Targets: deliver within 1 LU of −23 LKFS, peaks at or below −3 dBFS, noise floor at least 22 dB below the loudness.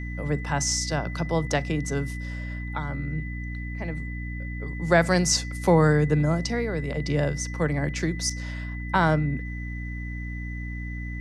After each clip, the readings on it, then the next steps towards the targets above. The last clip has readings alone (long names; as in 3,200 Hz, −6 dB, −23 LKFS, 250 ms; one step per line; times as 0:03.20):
mains hum 60 Hz; hum harmonics up to 300 Hz; level of the hum −31 dBFS; interfering tone 2,000 Hz; level of the tone −39 dBFS; integrated loudness −26.5 LKFS; sample peak −6.5 dBFS; target loudness −23.0 LKFS
→ mains-hum notches 60/120/180/240/300 Hz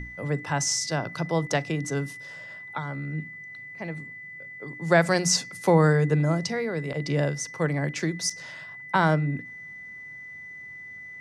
mains hum none found; interfering tone 2,000 Hz; level of the tone −39 dBFS
→ notch filter 2,000 Hz, Q 30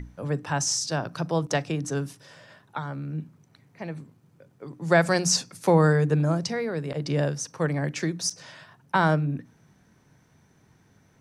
interfering tone none found; integrated loudness −25.5 LKFS; sample peak −7.0 dBFS; target loudness −23.0 LKFS
→ level +2.5 dB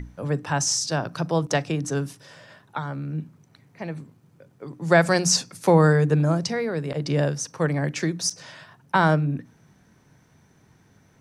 integrated loudness −23.0 LKFS; sample peak −4.5 dBFS; background noise floor −59 dBFS